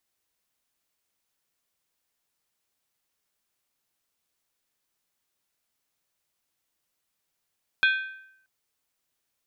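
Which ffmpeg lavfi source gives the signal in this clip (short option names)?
-f lavfi -i "aevalsrc='0.15*pow(10,-3*t/0.75)*sin(2*PI*1550*t)+0.0841*pow(10,-3*t/0.594)*sin(2*PI*2470.7*t)+0.0473*pow(10,-3*t/0.513)*sin(2*PI*3310.8*t)+0.0266*pow(10,-3*t/0.495)*sin(2*PI*3558.8*t)+0.015*pow(10,-3*t/0.46)*sin(2*PI*4112.1*t)':d=0.63:s=44100"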